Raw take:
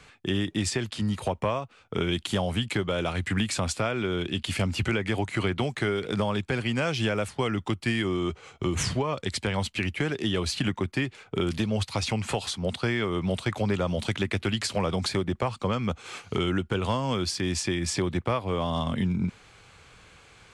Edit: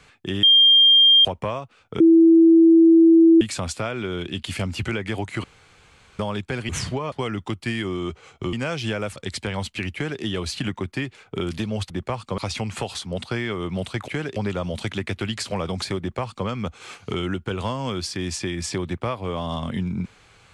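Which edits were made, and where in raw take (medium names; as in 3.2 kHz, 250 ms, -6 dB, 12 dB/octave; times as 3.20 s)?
0.43–1.25 s: bleep 3.2 kHz -10 dBFS
2.00–3.41 s: bleep 329 Hz -9 dBFS
5.44–6.19 s: room tone
6.69–7.32 s: swap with 8.73–9.16 s
9.94–10.22 s: copy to 13.60 s
15.23–15.71 s: copy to 11.90 s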